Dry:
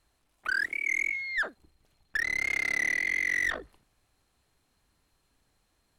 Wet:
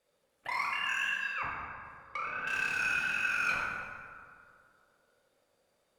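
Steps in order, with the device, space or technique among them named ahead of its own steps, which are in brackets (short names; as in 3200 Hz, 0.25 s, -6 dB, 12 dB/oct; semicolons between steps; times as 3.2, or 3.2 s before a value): alien voice (ring modulator 530 Hz; flange 1.6 Hz, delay 4.5 ms, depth 8.8 ms, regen -82%); 1.26–2.47 treble ducked by the level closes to 1500 Hz, closed at -36.5 dBFS; plate-style reverb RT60 2.2 s, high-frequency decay 0.5×, DRR -3.5 dB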